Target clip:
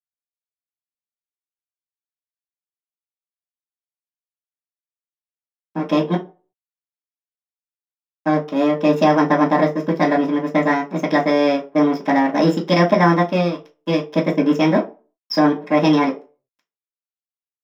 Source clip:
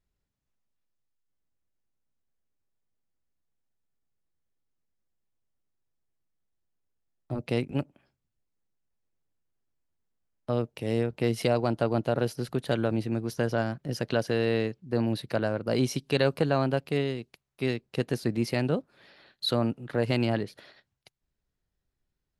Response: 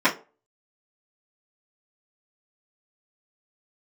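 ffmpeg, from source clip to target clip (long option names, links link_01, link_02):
-filter_complex "[0:a]asetrate=56007,aresample=44100,aeval=exprs='sgn(val(0))*max(abs(val(0))-0.0133,0)':channel_layout=same[link_01];[1:a]atrim=start_sample=2205,afade=type=out:start_time=0.43:duration=0.01,atrim=end_sample=19404[link_02];[link_01][link_02]afir=irnorm=-1:irlink=0,volume=-6dB"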